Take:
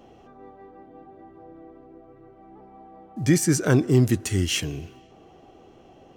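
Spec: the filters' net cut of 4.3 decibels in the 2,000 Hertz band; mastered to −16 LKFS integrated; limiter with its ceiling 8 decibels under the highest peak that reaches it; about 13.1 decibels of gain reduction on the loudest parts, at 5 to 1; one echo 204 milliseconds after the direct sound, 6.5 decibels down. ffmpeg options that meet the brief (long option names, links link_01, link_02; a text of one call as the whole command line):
ffmpeg -i in.wav -af "equalizer=frequency=2000:width_type=o:gain=-6,acompressor=threshold=-28dB:ratio=5,alimiter=level_in=1dB:limit=-24dB:level=0:latency=1,volume=-1dB,aecho=1:1:204:0.473,volume=21.5dB" out.wav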